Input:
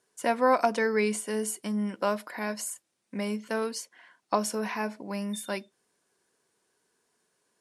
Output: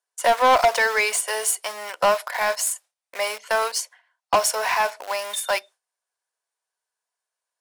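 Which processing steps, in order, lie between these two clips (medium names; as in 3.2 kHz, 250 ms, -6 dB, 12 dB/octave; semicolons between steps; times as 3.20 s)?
peaking EQ 710 Hz +8.5 dB 1.5 oct; in parallel at -5 dB: small samples zeroed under -31.5 dBFS; on the sum: gate with hold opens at -39 dBFS; high-pass 550 Hz 24 dB/octave; tilt shelf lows -5.5 dB; saturation -16.5 dBFS, distortion -9 dB; trim +4.5 dB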